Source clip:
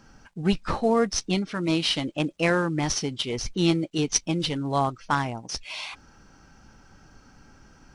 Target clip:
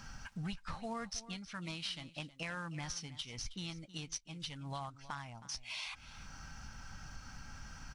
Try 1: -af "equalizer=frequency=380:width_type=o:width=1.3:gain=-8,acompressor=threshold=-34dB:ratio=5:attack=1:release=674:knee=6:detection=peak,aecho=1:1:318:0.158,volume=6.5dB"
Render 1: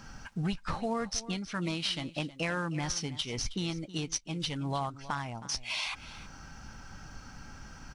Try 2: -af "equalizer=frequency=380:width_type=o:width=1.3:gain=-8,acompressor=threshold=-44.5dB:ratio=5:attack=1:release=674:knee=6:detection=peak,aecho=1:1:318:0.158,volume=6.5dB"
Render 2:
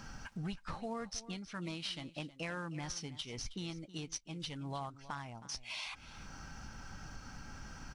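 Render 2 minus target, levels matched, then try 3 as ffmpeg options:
500 Hz band +3.5 dB
-af "equalizer=frequency=380:width_type=o:width=1.3:gain=-18.5,acompressor=threshold=-44.5dB:ratio=5:attack=1:release=674:knee=6:detection=peak,aecho=1:1:318:0.158,volume=6.5dB"

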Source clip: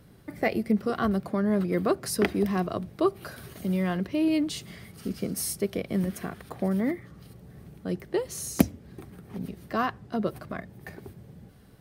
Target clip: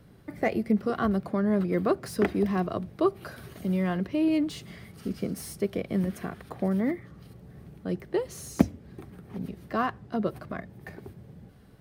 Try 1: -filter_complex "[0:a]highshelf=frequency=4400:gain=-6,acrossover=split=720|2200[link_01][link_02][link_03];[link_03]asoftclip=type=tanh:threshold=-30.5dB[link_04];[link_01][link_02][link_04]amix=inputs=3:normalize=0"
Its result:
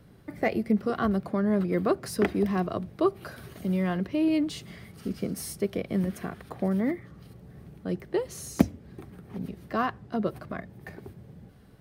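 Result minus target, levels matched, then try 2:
soft clipping: distortion −5 dB
-filter_complex "[0:a]highshelf=frequency=4400:gain=-6,acrossover=split=720|2200[link_01][link_02][link_03];[link_03]asoftclip=type=tanh:threshold=-38dB[link_04];[link_01][link_02][link_04]amix=inputs=3:normalize=0"

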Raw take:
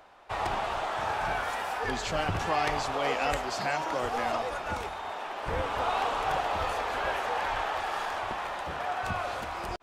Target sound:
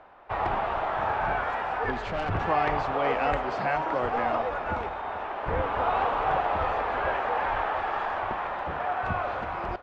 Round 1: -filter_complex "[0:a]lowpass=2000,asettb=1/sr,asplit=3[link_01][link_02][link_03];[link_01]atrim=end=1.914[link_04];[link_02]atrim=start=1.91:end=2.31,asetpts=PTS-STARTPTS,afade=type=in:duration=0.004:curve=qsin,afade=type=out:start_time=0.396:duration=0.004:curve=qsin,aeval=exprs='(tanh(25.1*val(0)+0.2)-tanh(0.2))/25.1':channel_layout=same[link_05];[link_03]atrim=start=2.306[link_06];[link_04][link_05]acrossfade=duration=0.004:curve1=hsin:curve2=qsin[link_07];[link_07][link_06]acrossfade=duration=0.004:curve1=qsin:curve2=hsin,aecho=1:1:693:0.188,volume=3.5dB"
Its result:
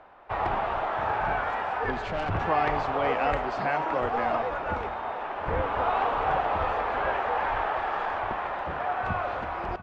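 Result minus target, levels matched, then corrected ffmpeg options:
echo 259 ms late
-filter_complex "[0:a]lowpass=2000,asettb=1/sr,asplit=3[link_01][link_02][link_03];[link_01]atrim=end=1.914[link_04];[link_02]atrim=start=1.91:end=2.31,asetpts=PTS-STARTPTS,afade=type=in:duration=0.004:curve=qsin,afade=type=out:start_time=0.396:duration=0.004:curve=qsin,aeval=exprs='(tanh(25.1*val(0)+0.2)-tanh(0.2))/25.1':channel_layout=same[link_05];[link_03]atrim=start=2.306[link_06];[link_04][link_05]acrossfade=duration=0.004:curve1=hsin:curve2=qsin[link_07];[link_07][link_06]acrossfade=duration=0.004:curve1=qsin:curve2=hsin,aecho=1:1:434:0.188,volume=3.5dB"

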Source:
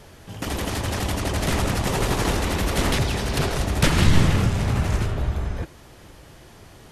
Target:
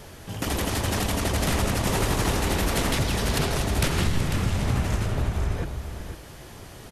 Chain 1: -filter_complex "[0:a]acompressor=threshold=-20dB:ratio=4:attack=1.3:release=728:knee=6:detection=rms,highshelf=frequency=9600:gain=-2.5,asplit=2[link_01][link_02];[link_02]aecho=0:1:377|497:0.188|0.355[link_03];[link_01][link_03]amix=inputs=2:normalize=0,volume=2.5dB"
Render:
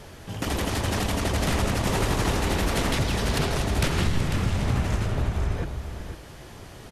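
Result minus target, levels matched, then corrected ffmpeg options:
8,000 Hz band −2.5 dB
-filter_complex "[0:a]acompressor=threshold=-20dB:ratio=4:attack=1.3:release=728:knee=6:detection=rms,highshelf=frequency=9600:gain=5.5,asplit=2[link_01][link_02];[link_02]aecho=0:1:377|497:0.188|0.355[link_03];[link_01][link_03]amix=inputs=2:normalize=0,volume=2.5dB"

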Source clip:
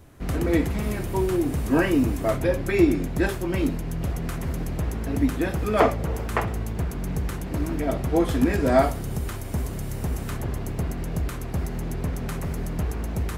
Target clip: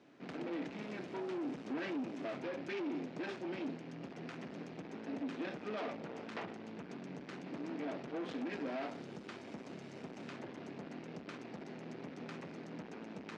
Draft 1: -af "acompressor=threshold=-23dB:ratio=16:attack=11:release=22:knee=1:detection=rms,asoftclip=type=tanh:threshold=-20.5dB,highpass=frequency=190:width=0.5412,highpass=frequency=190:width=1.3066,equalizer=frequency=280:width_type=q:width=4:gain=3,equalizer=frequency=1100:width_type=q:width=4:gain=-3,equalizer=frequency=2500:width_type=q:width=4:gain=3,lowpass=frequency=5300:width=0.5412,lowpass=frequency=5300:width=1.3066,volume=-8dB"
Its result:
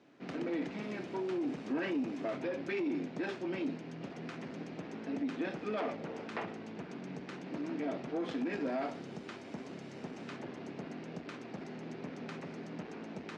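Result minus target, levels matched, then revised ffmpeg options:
soft clipping: distortion −9 dB
-af "acompressor=threshold=-23dB:ratio=16:attack=11:release=22:knee=1:detection=rms,asoftclip=type=tanh:threshold=-29dB,highpass=frequency=190:width=0.5412,highpass=frequency=190:width=1.3066,equalizer=frequency=280:width_type=q:width=4:gain=3,equalizer=frequency=1100:width_type=q:width=4:gain=-3,equalizer=frequency=2500:width_type=q:width=4:gain=3,lowpass=frequency=5300:width=0.5412,lowpass=frequency=5300:width=1.3066,volume=-8dB"

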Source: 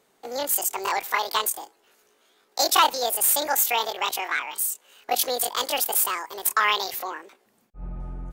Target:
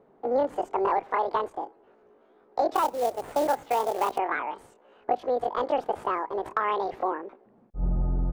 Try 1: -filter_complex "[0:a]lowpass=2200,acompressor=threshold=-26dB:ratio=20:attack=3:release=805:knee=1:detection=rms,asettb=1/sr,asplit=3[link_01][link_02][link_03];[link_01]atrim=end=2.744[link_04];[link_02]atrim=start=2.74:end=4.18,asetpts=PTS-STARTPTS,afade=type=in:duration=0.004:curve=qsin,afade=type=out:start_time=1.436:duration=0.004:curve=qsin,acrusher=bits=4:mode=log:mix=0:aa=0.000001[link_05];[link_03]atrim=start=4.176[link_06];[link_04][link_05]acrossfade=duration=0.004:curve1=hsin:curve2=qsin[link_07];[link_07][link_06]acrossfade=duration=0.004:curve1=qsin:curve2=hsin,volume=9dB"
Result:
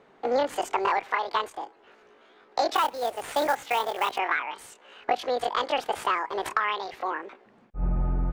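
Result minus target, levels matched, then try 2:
2,000 Hz band +6.5 dB
-filter_complex "[0:a]lowpass=760,acompressor=threshold=-26dB:ratio=20:attack=3:release=805:knee=1:detection=rms,asettb=1/sr,asplit=3[link_01][link_02][link_03];[link_01]atrim=end=2.744[link_04];[link_02]atrim=start=2.74:end=4.18,asetpts=PTS-STARTPTS,afade=type=in:duration=0.004:curve=qsin,afade=type=out:start_time=1.436:duration=0.004:curve=qsin,acrusher=bits=4:mode=log:mix=0:aa=0.000001[link_05];[link_03]atrim=start=4.176[link_06];[link_04][link_05]acrossfade=duration=0.004:curve1=hsin:curve2=qsin[link_07];[link_07][link_06]acrossfade=duration=0.004:curve1=qsin:curve2=hsin,volume=9dB"

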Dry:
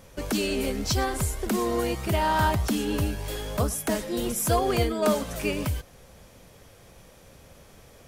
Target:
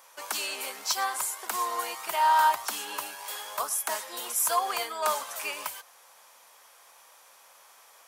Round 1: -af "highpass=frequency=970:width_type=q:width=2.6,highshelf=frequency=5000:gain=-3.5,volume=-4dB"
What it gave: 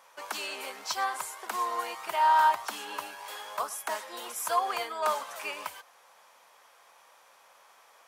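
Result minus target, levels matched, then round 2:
8,000 Hz band −6.5 dB
-af "highpass=frequency=970:width_type=q:width=2.6,highshelf=frequency=5000:gain=8,volume=-4dB"

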